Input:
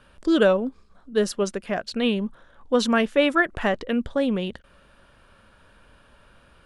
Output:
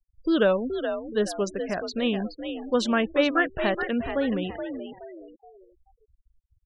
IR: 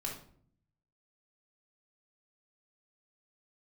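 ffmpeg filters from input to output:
-filter_complex "[0:a]asplit=5[s0][s1][s2][s3][s4];[s1]adelay=424,afreqshift=57,volume=0.398[s5];[s2]adelay=848,afreqshift=114,volume=0.148[s6];[s3]adelay=1272,afreqshift=171,volume=0.0543[s7];[s4]adelay=1696,afreqshift=228,volume=0.0202[s8];[s0][s5][s6][s7][s8]amix=inputs=5:normalize=0,afftfilt=real='re*gte(hypot(re,im),0.02)':imag='im*gte(hypot(re,im),0.02)':win_size=1024:overlap=0.75,volume=0.708"

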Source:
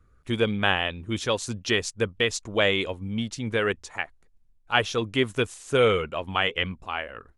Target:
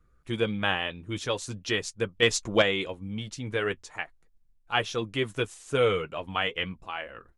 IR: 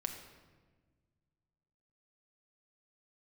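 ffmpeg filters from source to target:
-filter_complex "[0:a]asettb=1/sr,asplit=3[s0][s1][s2];[s0]atrim=end=2.224[s3];[s1]atrim=start=2.22:end=2.62,asetpts=PTS-STARTPTS,afade=t=in:d=0.004:c=qsin,afade=t=out:st=0.396:d=0.004:c=qsin,acontrast=76[s4];[s2]atrim=start=2.616[s5];[s3][s4]acrossfade=d=0.004:c1=hsin:c2=qsin[s6];[s6][s5]acrossfade=d=0.004:c1=qsin:c2=hsin,flanger=delay=5.7:depth=1.1:regen=-46:speed=0.41:shape=triangular"

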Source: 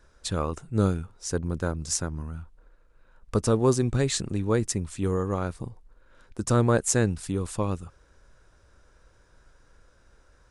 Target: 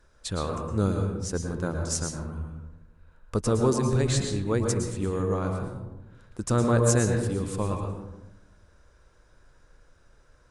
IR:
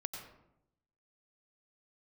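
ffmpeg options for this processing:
-filter_complex "[1:a]atrim=start_sample=2205,asetrate=35280,aresample=44100[s0];[0:a][s0]afir=irnorm=-1:irlink=0,volume=0.891"

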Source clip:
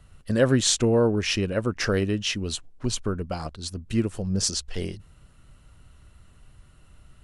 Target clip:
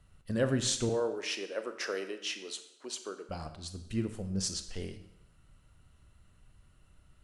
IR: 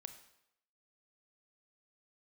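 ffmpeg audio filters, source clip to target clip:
-filter_complex "[0:a]asettb=1/sr,asplit=3[s0][s1][s2];[s0]atrim=end=0.894[s3];[s1]atrim=start=0.89:end=3.29,asetpts=PTS-STARTPTS,afade=t=in:d=0.004:c=qsin,afade=t=out:st=2.396:d=0.004:c=qsin,highpass=f=350:w=0.5412,highpass=f=350:w=1.3066[s4];[s2]atrim=start=3.286[s5];[s3][s4]acrossfade=d=0.004:c1=hsin:c2=qsin[s6];[s6][s5]acrossfade=d=0.004:c1=qsin:c2=hsin[s7];[1:a]atrim=start_sample=2205[s8];[s7][s8]afir=irnorm=-1:irlink=0,volume=0.668"

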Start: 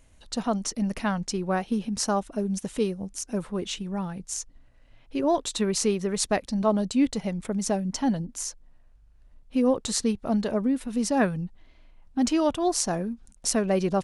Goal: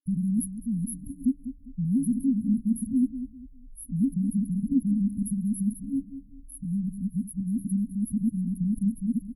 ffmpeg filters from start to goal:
-filter_complex "[0:a]areverse,acrossover=split=480[s0][s1];[s0]acompressor=threshold=0.0251:ratio=1.5[s2];[s2][s1]amix=inputs=2:normalize=0,asplit=2[s3][s4];[s4]adelay=299,lowpass=f=4800:p=1,volume=0.266,asplit=2[s5][s6];[s6]adelay=299,lowpass=f=4800:p=1,volume=0.29,asplit=2[s7][s8];[s8]adelay=299,lowpass=f=4800:p=1,volume=0.29[s9];[s3][s5][s7][s9]amix=inputs=4:normalize=0,atempo=1.5,afftfilt=real='re*(1-between(b*sr/4096,290,10000))':imag='im*(1-between(b*sr/4096,290,10000))':win_size=4096:overlap=0.75,volume=1.78"

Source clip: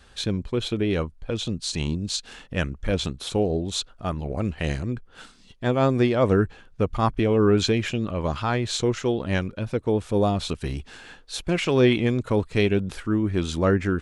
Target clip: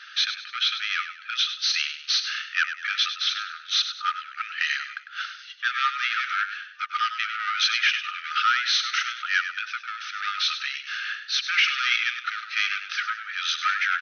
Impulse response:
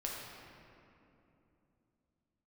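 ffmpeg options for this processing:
-filter_complex "[0:a]asplit=2[s0][s1];[s1]highpass=f=720:p=1,volume=14.1,asoftclip=type=tanh:threshold=0.473[s2];[s0][s2]amix=inputs=2:normalize=0,lowpass=f=2400:p=1,volume=0.501,afftfilt=real='re*between(b*sr/4096,1200,6300)':imag='im*between(b*sr/4096,1200,6300)':win_size=4096:overlap=0.75,asplit=5[s3][s4][s5][s6][s7];[s4]adelay=100,afreqshift=42,volume=0.316[s8];[s5]adelay=200,afreqshift=84,volume=0.111[s9];[s6]adelay=300,afreqshift=126,volume=0.0389[s10];[s7]adelay=400,afreqshift=168,volume=0.0135[s11];[s3][s8][s9][s10][s11]amix=inputs=5:normalize=0"

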